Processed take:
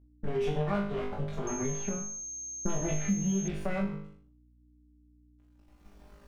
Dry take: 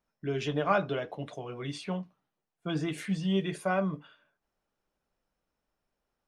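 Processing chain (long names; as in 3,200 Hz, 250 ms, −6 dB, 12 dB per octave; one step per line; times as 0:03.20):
lower of the sound and its delayed copy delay 5 ms
camcorder AGC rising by 14 dB per second
sample-and-hold tremolo 1.3 Hz, depth 90%
dead-zone distortion −58.5 dBFS
spectral tilt −2.5 dB per octave
mains hum 60 Hz, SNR 33 dB
flutter between parallel walls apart 3.4 metres, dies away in 0.48 s
flanger 0.37 Hz, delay 3 ms, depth 3.1 ms, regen −71%
downward compressor 2.5 to 1, threshold −37 dBFS, peak gain reduction 12 dB
0:01.47–0:03.48: switching amplifier with a slow clock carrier 6,400 Hz
level +6 dB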